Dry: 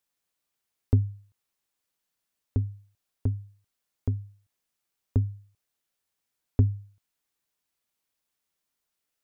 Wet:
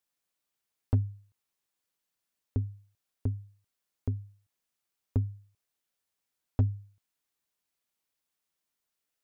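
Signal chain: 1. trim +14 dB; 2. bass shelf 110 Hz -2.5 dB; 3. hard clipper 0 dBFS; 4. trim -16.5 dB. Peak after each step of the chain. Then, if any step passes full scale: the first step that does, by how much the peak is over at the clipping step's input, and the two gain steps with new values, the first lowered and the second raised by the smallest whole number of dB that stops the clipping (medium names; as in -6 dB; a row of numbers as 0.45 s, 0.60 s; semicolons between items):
+5.0 dBFS, +4.0 dBFS, 0.0 dBFS, -16.5 dBFS; step 1, 4.0 dB; step 1 +10 dB, step 4 -12.5 dB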